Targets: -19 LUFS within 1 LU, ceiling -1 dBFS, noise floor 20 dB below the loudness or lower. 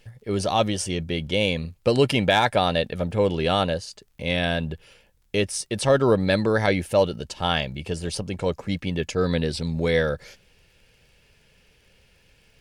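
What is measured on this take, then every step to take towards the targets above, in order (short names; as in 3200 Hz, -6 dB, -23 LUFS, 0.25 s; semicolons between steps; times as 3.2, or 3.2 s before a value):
ticks 25/s; loudness -23.5 LUFS; peak -8.5 dBFS; loudness target -19.0 LUFS
-> de-click; gain +4.5 dB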